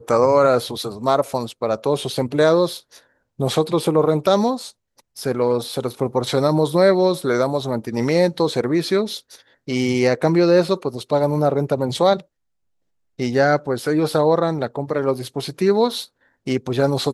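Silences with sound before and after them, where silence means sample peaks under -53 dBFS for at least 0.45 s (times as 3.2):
12.25–13.18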